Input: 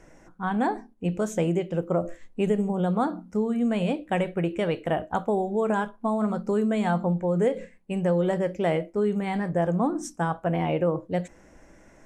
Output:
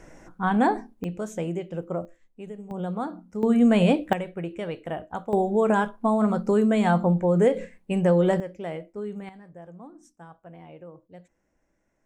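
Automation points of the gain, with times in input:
+4 dB
from 1.04 s -5 dB
from 2.05 s -15 dB
from 2.71 s -5.5 dB
from 3.43 s +6.5 dB
from 4.13 s -6 dB
from 5.33 s +3.5 dB
from 8.4 s -9 dB
from 9.29 s -20 dB

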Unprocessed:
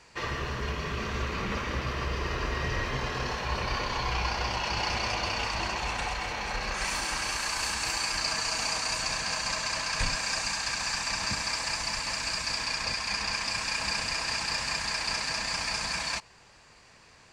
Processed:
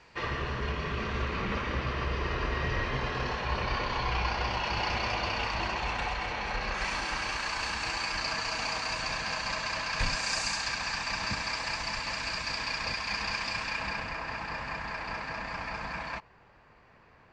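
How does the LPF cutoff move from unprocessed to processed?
9.93 s 4000 Hz
10.42 s 9700 Hz
10.79 s 4200 Hz
13.48 s 4200 Hz
14.17 s 1800 Hz

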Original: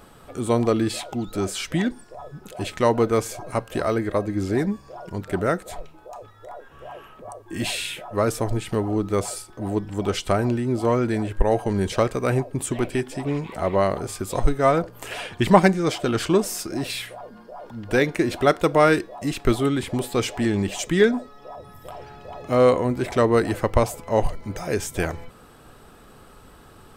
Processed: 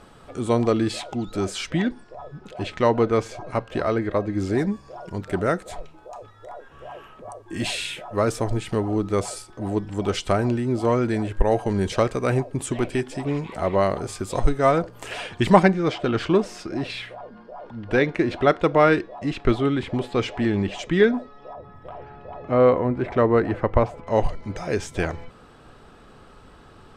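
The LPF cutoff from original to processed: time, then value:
7400 Hz
from 1.7 s 4400 Hz
from 4.35 s 8600 Hz
from 15.63 s 3600 Hz
from 21.53 s 2100 Hz
from 24.07 s 5600 Hz

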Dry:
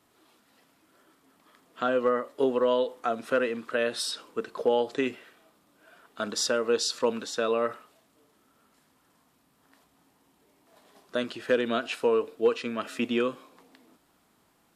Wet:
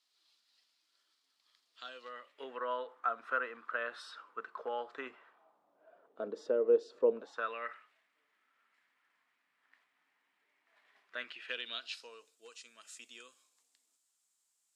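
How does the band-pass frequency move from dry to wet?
band-pass, Q 2.8
2.01 s 4500 Hz
2.69 s 1300 Hz
4.95 s 1300 Hz
6.32 s 440 Hz
7.12 s 440 Hz
7.54 s 2000 Hz
11.23 s 2000 Hz
12.33 s 7400 Hz

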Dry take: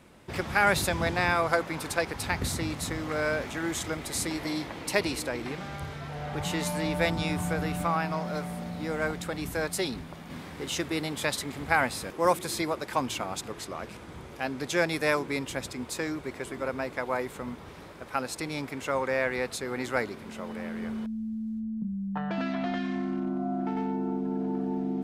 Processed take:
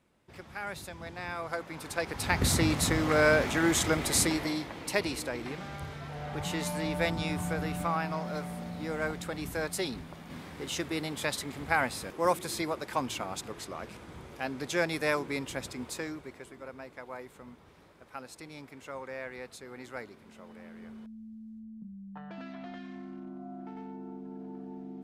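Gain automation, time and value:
0.99 s -15.5 dB
1.91 s -6 dB
2.53 s +5.5 dB
4.2 s +5.5 dB
4.64 s -3 dB
15.88 s -3 dB
16.56 s -12.5 dB

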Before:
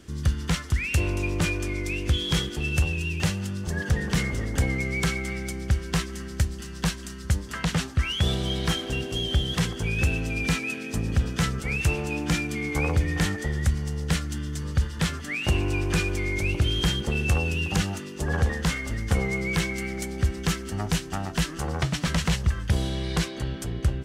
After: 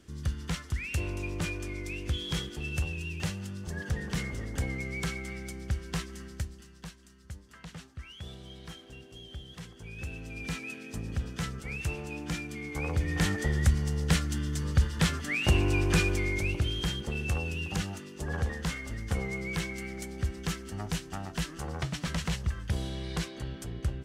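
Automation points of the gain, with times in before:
6.25 s -8 dB
6.92 s -19.5 dB
9.64 s -19.5 dB
10.63 s -9.5 dB
12.73 s -9.5 dB
13.4 s -0.5 dB
16.08 s -0.5 dB
16.78 s -7.5 dB

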